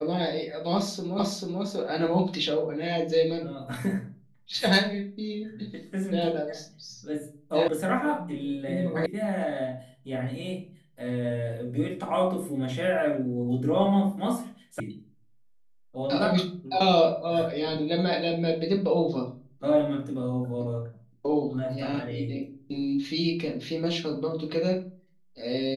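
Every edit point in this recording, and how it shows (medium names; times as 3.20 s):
1.19 s: repeat of the last 0.44 s
7.68 s: sound stops dead
9.06 s: sound stops dead
14.80 s: sound stops dead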